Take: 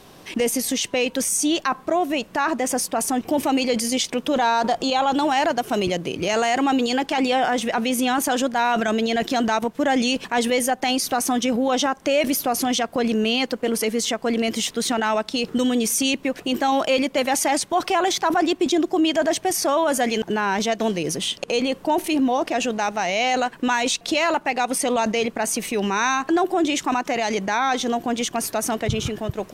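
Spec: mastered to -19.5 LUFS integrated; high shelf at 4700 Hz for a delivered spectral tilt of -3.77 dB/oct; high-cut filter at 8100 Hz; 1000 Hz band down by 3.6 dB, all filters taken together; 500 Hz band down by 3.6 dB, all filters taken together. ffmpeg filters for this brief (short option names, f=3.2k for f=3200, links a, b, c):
-af "lowpass=8.1k,equalizer=f=500:t=o:g=-3.5,equalizer=f=1k:t=o:g=-3,highshelf=f=4.7k:g=-8.5,volume=5dB"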